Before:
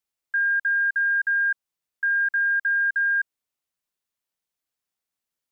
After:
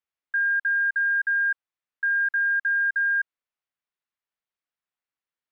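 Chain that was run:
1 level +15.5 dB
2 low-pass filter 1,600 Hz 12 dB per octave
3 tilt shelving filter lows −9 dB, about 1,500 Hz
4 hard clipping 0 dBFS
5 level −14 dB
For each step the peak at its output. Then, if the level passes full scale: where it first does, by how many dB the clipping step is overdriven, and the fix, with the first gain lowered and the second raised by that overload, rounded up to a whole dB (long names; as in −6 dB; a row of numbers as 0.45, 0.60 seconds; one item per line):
−3.0, −6.0, −5.5, −5.5, −19.5 dBFS
no step passes full scale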